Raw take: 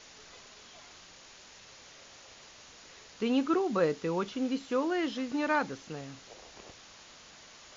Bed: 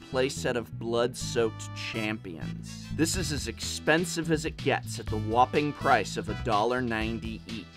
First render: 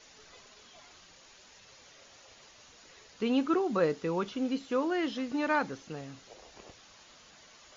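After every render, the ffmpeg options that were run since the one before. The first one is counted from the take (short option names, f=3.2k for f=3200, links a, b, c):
-af "afftdn=nr=6:nf=-54"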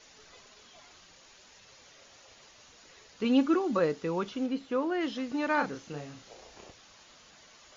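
-filter_complex "[0:a]asettb=1/sr,asplit=3[a][b][c];[a]atrim=end=3.244[d];[b]atrim=start=3.24:end=3.79,asetpts=PTS-STARTPTS,afade=t=in:d=0.004:c=qsin,afade=t=out:st=0.546:d=0.004:c=qsin,aecho=1:1:3.5:0.65,atrim=end_sample=24255[e];[c]atrim=start=3.786[f];[d][e]acrossfade=d=0.004:c1=hsin:c2=qsin[g];[g][f]acrossfade=d=0.004:c1=qsin:c2=hsin,asettb=1/sr,asplit=3[h][i][j];[h]atrim=end=4.464[k];[i]atrim=start=4.46:end=5.01,asetpts=PTS-STARTPTS,afade=t=in:d=0.004:c=qsin,afade=t=out:st=0.546:d=0.004:c=qsin,lowpass=f=3k:p=1[l];[j]atrim=start=5.006[m];[k][l]acrossfade=d=0.004:c1=hsin:c2=qsin[n];[n][m]acrossfade=d=0.004:c1=qsin:c2=hsin,asettb=1/sr,asplit=3[o][p][q];[o]atrim=end=5.544[r];[p]atrim=start=5.54:end=6.67,asetpts=PTS-STARTPTS,afade=t=in:d=0.004:c=qsin,afade=t=out:st=1.126:d=0.004:c=qsin,asplit=2[s][t];[t]adelay=34,volume=-5dB[u];[s][u]amix=inputs=2:normalize=0,atrim=end_sample=49833[v];[q]atrim=start=6.666[w];[r][v]acrossfade=d=0.004:c1=hsin:c2=qsin[x];[x][w]acrossfade=d=0.004:c1=qsin:c2=hsin"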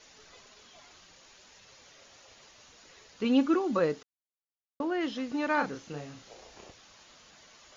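-filter_complex "[0:a]asplit=3[a][b][c];[a]atrim=end=4.03,asetpts=PTS-STARTPTS,afade=t=out:st=4.026:d=0.004:c=hsin[d];[b]atrim=start=4.03:end=4.8,asetpts=PTS-STARTPTS,volume=0[e];[c]atrim=start=4.8,asetpts=PTS-STARTPTS,afade=t=in:d=0.004:c=hsin[f];[d][e][f]concat=n=3:v=0:a=1"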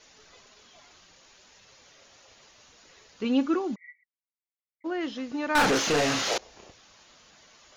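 -filter_complex "[0:a]asplit=3[a][b][c];[a]afade=t=out:st=3.74:d=0.02[d];[b]asuperpass=centerf=2100:order=20:qfactor=5.1,afade=t=in:st=3.74:d=0.02,afade=t=out:st=4.84:d=0.02[e];[c]afade=t=in:st=4.84:d=0.02[f];[d][e][f]amix=inputs=3:normalize=0,asettb=1/sr,asplit=3[g][h][i];[g]atrim=end=5.554[j];[h]atrim=start=5.55:end=6.38,asetpts=PTS-STARTPTS,afade=t=in:d=0.004:c=qsin,afade=t=out:st=0.826:d=0.004:c=qsin,asplit=2[k][l];[l]highpass=f=720:p=1,volume=36dB,asoftclip=type=tanh:threshold=-14.5dB[m];[k][m]amix=inputs=2:normalize=0,lowpass=f=6.1k:p=1,volume=-6dB[n];[i]atrim=start=6.376[o];[j][n]acrossfade=d=0.004:c1=hsin:c2=qsin[p];[p][o]acrossfade=d=0.004:c1=qsin:c2=hsin"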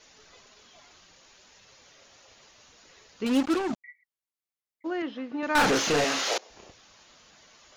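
-filter_complex "[0:a]asettb=1/sr,asplit=3[a][b][c];[a]atrim=end=3.264[d];[b]atrim=start=3.26:end=3.84,asetpts=PTS-STARTPTS,afade=t=in:d=0.004:c=qsin,afade=t=out:st=0.576:d=0.004:c=qsin,acrusher=bits=4:mix=0:aa=0.5[e];[c]atrim=start=3.836[f];[d][e]acrossfade=d=0.004:c1=hsin:c2=qsin[g];[g][f]acrossfade=d=0.004:c1=qsin:c2=hsin,asettb=1/sr,asplit=3[h][i][j];[h]atrim=end=5.024[k];[i]atrim=start=5.02:end=5.43,asetpts=PTS-STARTPTS,afade=t=in:d=0.004:c=qsin,afade=t=out:st=0.406:d=0.004:c=qsin,highpass=200,lowpass=2.6k[l];[j]atrim=start=5.426[m];[k][l]acrossfade=d=0.004:c1=hsin:c2=qsin[n];[n][m]acrossfade=d=0.004:c1=qsin:c2=hsin,asettb=1/sr,asplit=3[o][p][q];[o]atrim=end=6.044[r];[p]atrim=start=6.04:end=6.5,asetpts=PTS-STARTPTS,afade=t=in:d=0.004:c=qsin,afade=t=out:st=0.456:d=0.004:c=qsin,highpass=320[s];[q]atrim=start=6.496[t];[r][s]acrossfade=d=0.004:c1=hsin:c2=qsin[u];[u][t]acrossfade=d=0.004:c1=qsin:c2=hsin"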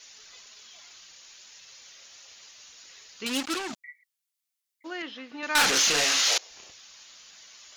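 -af "tiltshelf=f=1.4k:g=-9.5"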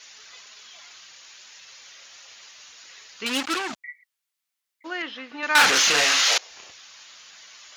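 -af "highpass=46,equalizer=f=1.5k:w=0.43:g=7"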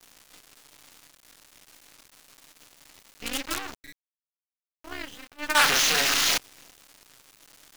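-af "acrusher=bits=4:dc=4:mix=0:aa=0.000001,tremolo=f=290:d=0.947"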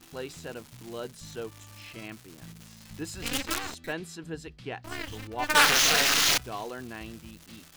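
-filter_complex "[1:a]volume=-11dB[a];[0:a][a]amix=inputs=2:normalize=0"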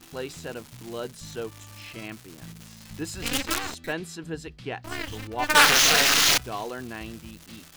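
-af "volume=3.5dB"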